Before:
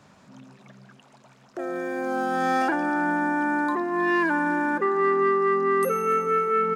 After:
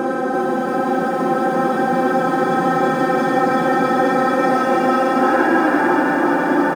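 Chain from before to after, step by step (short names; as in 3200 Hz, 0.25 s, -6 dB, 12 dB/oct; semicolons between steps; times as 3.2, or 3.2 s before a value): per-bin compression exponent 0.6; high shelf 6400 Hz -5.5 dB; Paulstretch 11×, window 0.05 s, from 2.2; low shelf 450 Hz +6.5 dB; frequency-shifting echo 0.479 s, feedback 48%, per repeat +51 Hz, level -14.5 dB; lo-fi delay 0.337 s, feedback 80%, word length 8-bit, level -5 dB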